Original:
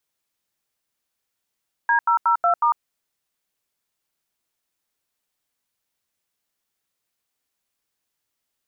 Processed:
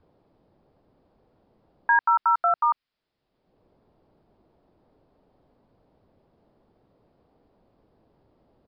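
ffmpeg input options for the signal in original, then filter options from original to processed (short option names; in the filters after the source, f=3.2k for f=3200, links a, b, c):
-f lavfi -i "aevalsrc='0.133*clip(min(mod(t,0.183),0.1-mod(t,0.183))/0.002,0,1)*(eq(floor(t/0.183),0)*(sin(2*PI*941*mod(t,0.183))+sin(2*PI*1633*mod(t,0.183)))+eq(floor(t/0.183),1)*(sin(2*PI*941*mod(t,0.183))+sin(2*PI*1336*mod(t,0.183)))+eq(floor(t/0.183),2)*(sin(2*PI*941*mod(t,0.183))+sin(2*PI*1336*mod(t,0.183)))+eq(floor(t/0.183),3)*(sin(2*PI*697*mod(t,0.183))+sin(2*PI*1336*mod(t,0.183)))+eq(floor(t/0.183),4)*(sin(2*PI*941*mod(t,0.183))+sin(2*PI*1209*mod(t,0.183))))':d=0.915:s=44100"
-filter_complex "[0:a]adynamicequalizer=threshold=0.0178:dfrequency=560:dqfactor=0.76:tfrequency=560:tqfactor=0.76:attack=5:release=100:ratio=0.375:range=3:mode=cutabove:tftype=bell,acrossover=split=750[a][b];[a]acompressor=mode=upward:threshold=-40dB:ratio=2.5[c];[c][b]amix=inputs=2:normalize=0,aresample=11025,aresample=44100"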